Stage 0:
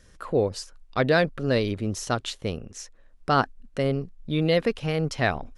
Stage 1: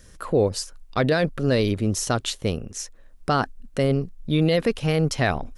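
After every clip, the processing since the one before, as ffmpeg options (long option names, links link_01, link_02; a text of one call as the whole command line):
ffmpeg -i in.wav -af "lowshelf=frequency=500:gain=3,alimiter=limit=-13.5dB:level=0:latency=1:release=17,highshelf=frequency=8000:gain=12,volume=2.5dB" out.wav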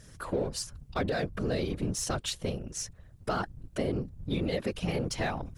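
ffmpeg -i in.wav -filter_complex "[0:a]asplit=2[link_01][link_02];[link_02]asoftclip=type=hard:threshold=-27dB,volume=-7dB[link_03];[link_01][link_03]amix=inputs=2:normalize=0,afftfilt=real='hypot(re,im)*cos(2*PI*random(0))':imag='hypot(re,im)*sin(2*PI*random(1))':win_size=512:overlap=0.75,acompressor=threshold=-29dB:ratio=2.5" out.wav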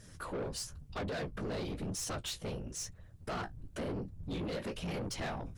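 ffmpeg -i in.wav -af "flanger=delay=9.8:depth=9:regen=-31:speed=0.99:shape=sinusoidal,asoftclip=type=tanh:threshold=-36dB,volume=2dB" out.wav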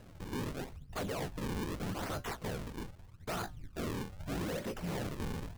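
ffmpeg -i in.wav -af "flanger=delay=5.8:depth=1.7:regen=-88:speed=0.87:shape=triangular,acrusher=samples=38:mix=1:aa=0.000001:lfo=1:lforange=60.8:lforate=0.8,volume=5dB" out.wav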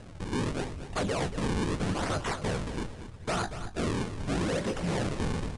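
ffmpeg -i in.wav -af "aresample=22050,aresample=44100,aecho=1:1:234|468|702|936:0.266|0.104|0.0405|0.0158,volume=7.5dB" out.wav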